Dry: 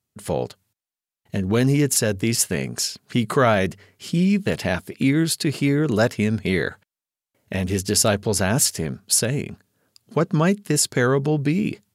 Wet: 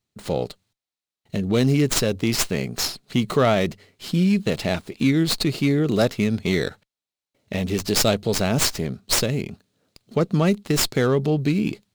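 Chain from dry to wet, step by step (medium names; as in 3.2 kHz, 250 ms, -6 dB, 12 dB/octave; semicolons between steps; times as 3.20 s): graphic EQ with 31 bands 100 Hz -4 dB, 1 kHz -6 dB, 1.6 kHz -8 dB, 4 kHz +7 dB; sliding maximum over 3 samples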